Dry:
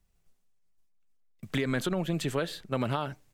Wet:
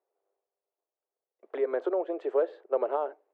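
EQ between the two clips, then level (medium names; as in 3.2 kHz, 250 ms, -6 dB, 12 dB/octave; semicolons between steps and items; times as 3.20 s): steep high-pass 380 Hz 48 dB/octave; Chebyshev low-pass 610 Hz, order 2; +7.5 dB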